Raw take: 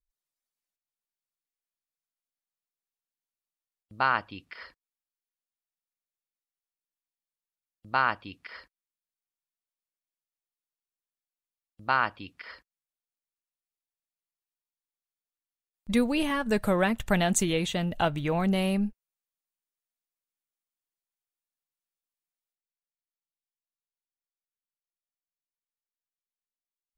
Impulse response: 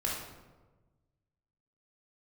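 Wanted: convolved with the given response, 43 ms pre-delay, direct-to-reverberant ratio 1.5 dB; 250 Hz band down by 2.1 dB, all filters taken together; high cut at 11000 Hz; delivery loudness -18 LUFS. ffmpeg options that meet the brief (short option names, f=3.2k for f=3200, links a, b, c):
-filter_complex "[0:a]lowpass=11k,equalizer=f=250:t=o:g=-3,asplit=2[a][b];[1:a]atrim=start_sample=2205,adelay=43[c];[b][c]afir=irnorm=-1:irlink=0,volume=-7dB[d];[a][d]amix=inputs=2:normalize=0,volume=8dB"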